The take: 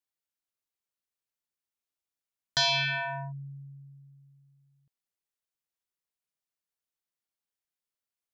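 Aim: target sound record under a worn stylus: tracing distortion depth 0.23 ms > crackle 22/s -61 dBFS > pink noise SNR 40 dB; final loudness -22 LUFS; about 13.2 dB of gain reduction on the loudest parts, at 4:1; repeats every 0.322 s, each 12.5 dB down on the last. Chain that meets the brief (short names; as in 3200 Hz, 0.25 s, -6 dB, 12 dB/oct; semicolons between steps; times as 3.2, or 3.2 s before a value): compressor 4:1, threshold -40 dBFS; feedback echo 0.322 s, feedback 24%, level -12.5 dB; tracing distortion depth 0.23 ms; crackle 22/s -61 dBFS; pink noise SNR 40 dB; gain +18.5 dB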